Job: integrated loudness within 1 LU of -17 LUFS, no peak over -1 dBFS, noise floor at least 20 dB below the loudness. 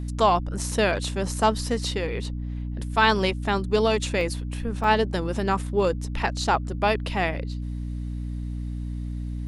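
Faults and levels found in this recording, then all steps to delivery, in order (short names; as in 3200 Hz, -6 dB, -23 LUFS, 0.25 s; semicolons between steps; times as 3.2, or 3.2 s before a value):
dropouts 3; longest dropout 1.5 ms; hum 60 Hz; harmonics up to 300 Hz; hum level -28 dBFS; loudness -25.5 LUFS; peak -5.5 dBFS; loudness target -17.0 LUFS
-> interpolate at 0.72/4.21/4.84, 1.5 ms; notches 60/120/180/240/300 Hz; gain +8.5 dB; limiter -1 dBFS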